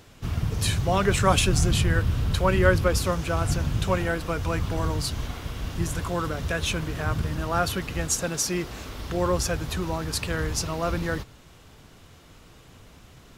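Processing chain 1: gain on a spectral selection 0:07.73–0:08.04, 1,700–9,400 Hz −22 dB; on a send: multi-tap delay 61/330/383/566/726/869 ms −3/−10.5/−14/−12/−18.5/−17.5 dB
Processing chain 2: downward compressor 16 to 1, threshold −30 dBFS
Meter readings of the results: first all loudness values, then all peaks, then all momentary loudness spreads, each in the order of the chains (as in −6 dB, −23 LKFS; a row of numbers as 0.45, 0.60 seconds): −23.5, −35.5 LKFS; −4.0, −19.0 dBFS; 11, 17 LU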